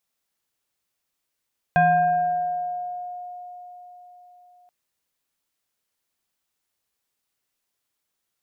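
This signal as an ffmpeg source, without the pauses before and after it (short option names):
-f lavfi -i "aevalsrc='0.224*pow(10,-3*t/4.41)*sin(2*PI*717*t+0.89*pow(10,-3*t/2.11)*sin(2*PI*1.23*717*t))':d=2.93:s=44100"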